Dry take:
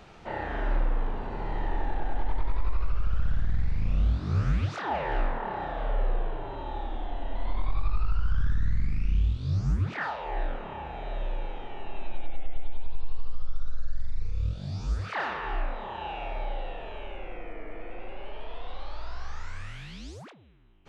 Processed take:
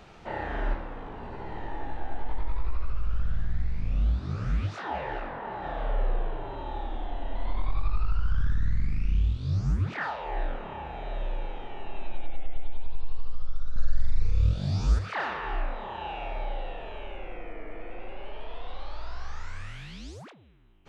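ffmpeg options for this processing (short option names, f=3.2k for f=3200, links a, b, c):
-filter_complex "[0:a]asplit=3[a][b][c];[a]afade=t=out:st=0.73:d=0.02[d];[b]flanger=delay=15:depth=4:speed=1.4,afade=t=in:st=0.73:d=0.02,afade=t=out:st=5.63:d=0.02[e];[c]afade=t=in:st=5.63:d=0.02[f];[d][e][f]amix=inputs=3:normalize=0,asettb=1/sr,asplit=3[g][h][i];[g]atrim=end=13.764[j];[h]atrim=start=13.76:end=14.99,asetpts=PTS-STARTPTS,afade=t=in:d=0.004:c=qsin,afade=t=out:st=1.226:d=0.004:c=qsin,acontrast=61[k];[i]atrim=start=14.986[l];[j][k]acrossfade=d=0.004:c1=hsin:c2=qsin[m];[m][l]acrossfade=d=0.004:c1=qsin:c2=hsin"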